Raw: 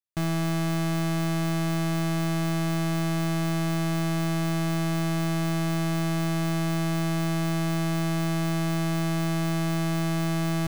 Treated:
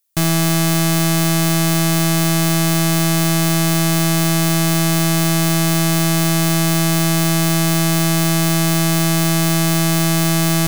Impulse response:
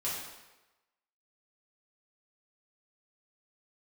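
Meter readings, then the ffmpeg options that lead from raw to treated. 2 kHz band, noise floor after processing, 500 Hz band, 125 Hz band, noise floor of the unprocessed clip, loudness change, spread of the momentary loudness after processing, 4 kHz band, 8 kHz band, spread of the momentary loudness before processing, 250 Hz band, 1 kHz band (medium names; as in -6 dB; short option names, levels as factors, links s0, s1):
+12.0 dB, -15 dBFS, +9.5 dB, +9.5 dB, -26 dBFS, +11.5 dB, 0 LU, +15.5 dB, +20.0 dB, 0 LU, +9.5 dB, +10.0 dB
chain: -af "crystalizer=i=4:c=0,apsyclip=5.31,volume=0.562"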